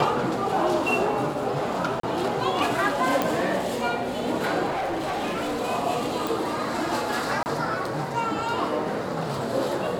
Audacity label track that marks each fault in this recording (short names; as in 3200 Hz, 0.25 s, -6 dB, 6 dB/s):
2.000000	2.030000	gap 33 ms
3.220000	3.220000	pop
4.700000	5.590000	clipped -24.5 dBFS
6.270000	6.270000	pop
7.430000	7.460000	gap 29 ms